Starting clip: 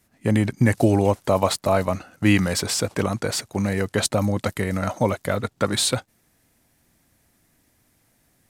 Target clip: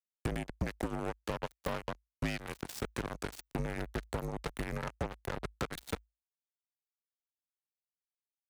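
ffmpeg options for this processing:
ffmpeg -i in.wav -filter_complex "[0:a]deesser=0.5,asettb=1/sr,asplit=3[link_01][link_02][link_03];[link_01]atrim=end=3.594[link_04];[link_02]atrim=start=3.59:end=5.63,asetpts=PTS-STARTPTS,afade=type=in:duration=0.004:curve=qsin,afade=type=out:start_time=2.036:duration=0.004:curve=qsin,lowshelf=frequency=190:gain=6.5[link_05];[link_03]atrim=start=5.626[link_06];[link_04][link_05]acrossfade=duration=0.004:curve1=hsin:curve2=qsin[link_07];[link_07][link_06]acrossfade=duration=0.004:curve1=qsin:curve2=hsin,acompressor=threshold=-33dB:ratio=8,acrusher=bits=4:mix=0:aa=0.5,afreqshift=-54" out.wav

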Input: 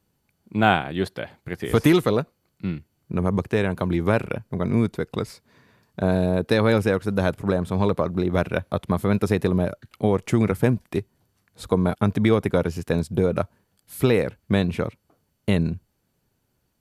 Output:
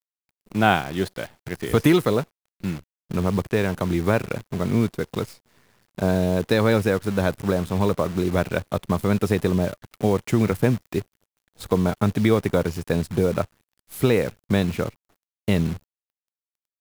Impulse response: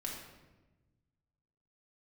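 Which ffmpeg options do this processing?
-af "acrusher=bits=7:dc=4:mix=0:aa=0.000001"

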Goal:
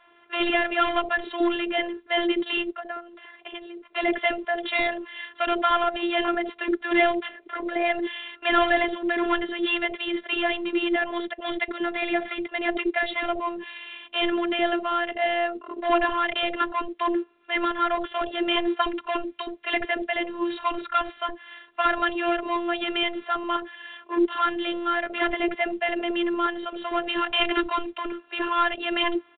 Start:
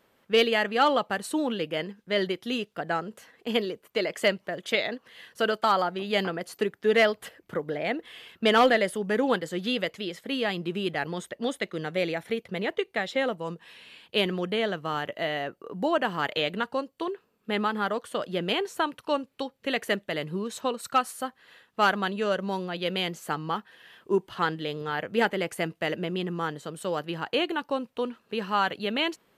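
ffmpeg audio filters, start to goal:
ffmpeg -i in.wav -filter_complex "[0:a]asplit=3[link_01][link_02][link_03];[link_01]afade=type=out:start_time=2.7:duration=0.02[link_04];[link_02]acompressor=threshold=-41dB:ratio=8,afade=type=in:start_time=2.7:duration=0.02,afade=type=out:start_time=3.87:duration=0.02[link_05];[link_03]afade=type=in:start_time=3.87:duration=0.02[link_06];[link_04][link_05][link_06]amix=inputs=3:normalize=0,asettb=1/sr,asplit=3[link_07][link_08][link_09];[link_07]atrim=end=27.094[link_10];[link_08]atrim=start=27.09:end=27.92,asetpts=PTS-STARTPTS,afade=type=in:duration=0.004:curve=qsin,afade=type=out:start_time=0.826:duration=0.004:curve=qsin,highshelf=frequency=2100:gain=12[link_11];[link_09]atrim=start=27.916[link_12];[link_10][link_11]acrossfade=duration=0.004:curve1=hsin:curve2=qsin[link_13];[link_13][link_12]acrossfade=duration=0.004:curve1=qsin:curve2=hsin,asplit=2[link_14][link_15];[link_15]highpass=frequency=720:poles=1,volume=23dB,asoftclip=type=tanh:threshold=-8dB[link_16];[link_14][link_16]amix=inputs=2:normalize=0,lowpass=frequency=2400:poles=1,volume=-6dB,afftfilt=real='hypot(re,im)*cos(PI*b)':imag='0':win_size=512:overlap=0.75,acrossover=split=530[link_17][link_18];[link_17]adelay=70[link_19];[link_19][link_18]amix=inputs=2:normalize=0" -ar 8000 -c:a pcm_mulaw out.wav

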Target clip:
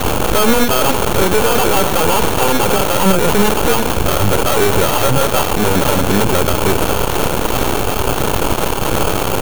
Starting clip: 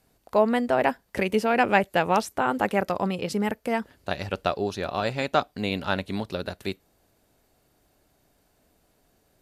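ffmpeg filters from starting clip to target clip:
ffmpeg -i in.wav -filter_complex "[0:a]aeval=exprs='val(0)+0.5*0.0473*sgn(val(0))':channel_layout=same,acrossover=split=220[link_01][link_02];[link_02]acrusher=samples=23:mix=1:aa=0.000001[link_03];[link_01][link_03]amix=inputs=2:normalize=0,aecho=1:1:2.2:0.42,aeval=exprs='0.119*(cos(1*acos(clip(val(0)/0.119,-1,1)))-cos(1*PI/2))+0.0473*(cos(6*acos(clip(val(0)/0.119,-1,1)))-cos(6*PI/2))':channel_layout=same,highshelf=frequency=9500:gain=8,bandreject=frequency=4900:width=6.9,alimiter=level_in=14dB:limit=-1dB:release=50:level=0:latency=1,volume=-1dB" out.wav

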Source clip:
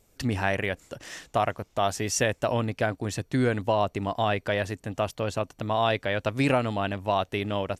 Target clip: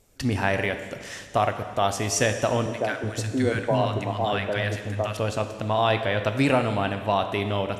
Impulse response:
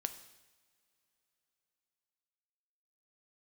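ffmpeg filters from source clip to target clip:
-filter_complex "[0:a]asettb=1/sr,asplit=3[link_01][link_02][link_03];[link_01]atrim=end=2.664[link_04];[link_02]atrim=start=2.66:end=5.17,asetpts=PTS-STARTPTS,afade=type=in:duration=0.004:curve=qsin,afade=type=out:start_time=2.506:duration=0.004:curve=qsin,acrossover=split=210|1000[link_05][link_06][link_07];[link_07]adelay=60[link_08];[link_05]adelay=370[link_09];[link_09][link_06][link_08]amix=inputs=3:normalize=0,atrim=end_sample=110691[link_10];[link_03]atrim=start=5.166[link_11];[link_04][link_10]acrossfade=duration=0.004:curve1=hsin:curve2=qsin[link_12];[link_12][link_11]acrossfade=duration=0.004:curve1=qsin:curve2=hsin[link_13];[1:a]atrim=start_sample=2205,asetrate=24696,aresample=44100[link_14];[link_13][link_14]afir=irnorm=-1:irlink=0"

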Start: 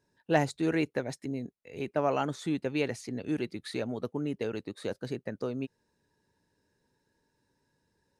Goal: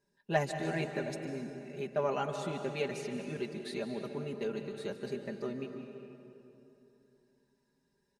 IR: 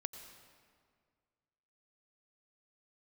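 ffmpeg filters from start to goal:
-filter_complex "[0:a]aecho=1:1:5:0.91[link_01];[1:a]atrim=start_sample=2205,asetrate=26460,aresample=44100[link_02];[link_01][link_02]afir=irnorm=-1:irlink=0,volume=-6.5dB"

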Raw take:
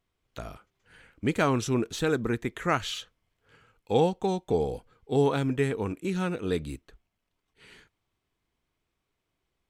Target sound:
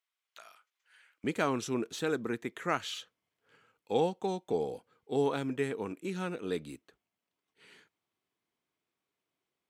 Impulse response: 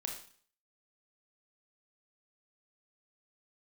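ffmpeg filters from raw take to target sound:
-af "asetnsamples=nb_out_samples=441:pad=0,asendcmd='1.24 highpass f 190',highpass=1300,volume=-5dB"

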